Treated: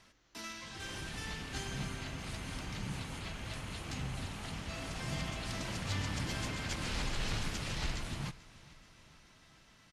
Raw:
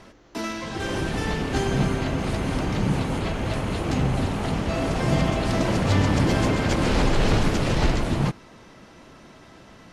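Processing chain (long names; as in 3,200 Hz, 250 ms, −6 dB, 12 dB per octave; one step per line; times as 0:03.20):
guitar amp tone stack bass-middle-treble 5-5-5
repeating echo 433 ms, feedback 59%, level −21 dB
level −1.5 dB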